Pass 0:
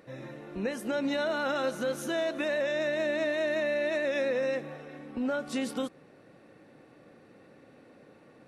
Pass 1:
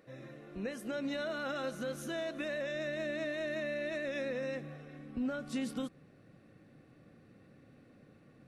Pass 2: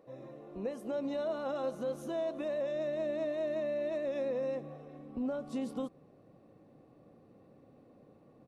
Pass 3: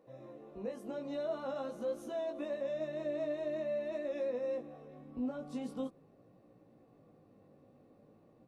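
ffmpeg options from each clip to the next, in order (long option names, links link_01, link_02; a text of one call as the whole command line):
ffmpeg -i in.wav -af "asubboost=boost=3.5:cutoff=220,bandreject=frequency=900:width=7.2,volume=-6.5dB" out.wav
ffmpeg -i in.wav -af "firequalizer=gain_entry='entry(120,0);entry(430,7);entry(1000,9);entry(1500,-8);entry(3000,-4)':delay=0.05:min_phase=1,volume=-3.5dB" out.wav
ffmpeg -i in.wav -af "flanger=delay=16.5:depth=3.8:speed=0.46" out.wav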